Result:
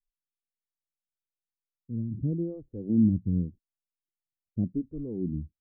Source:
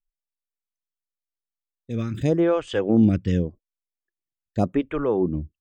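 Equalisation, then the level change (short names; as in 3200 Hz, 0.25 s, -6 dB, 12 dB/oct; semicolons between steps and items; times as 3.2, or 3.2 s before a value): ladder low-pass 310 Hz, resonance 25%; 0.0 dB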